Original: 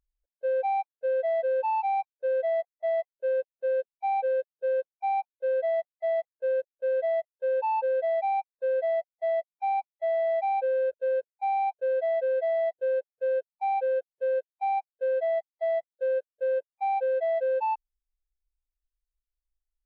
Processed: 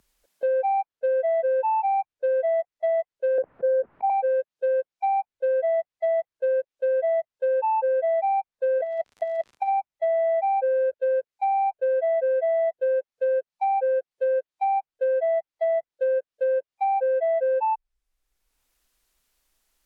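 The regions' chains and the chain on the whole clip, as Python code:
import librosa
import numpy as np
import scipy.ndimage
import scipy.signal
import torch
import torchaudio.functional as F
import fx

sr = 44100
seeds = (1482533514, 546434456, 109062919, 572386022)

y = fx.chain(x, sr, fx.lowpass(hz=1500.0, slope=24),
    fx.low_shelf(hz=420.0, db=6.5),
    fx.sustainer(db_per_s=37.0), at=(3.38, 4.1))
y = fx.over_compress(y, sr, threshold_db=-31.0, ratio=-0.5, at=(8.78, 9.67), fade=0.02)
y = fx.dmg_crackle(y, sr, seeds[0], per_s=83.0, level_db=-46.0, at=(8.78, 9.67), fade=0.02)
y = fx.env_lowpass_down(y, sr, base_hz=2000.0, full_db=-24.5)
y = fx.band_squash(y, sr, depth_pct=70)
y = F.gain(torch.from_numpy(y), 3.5).numpy()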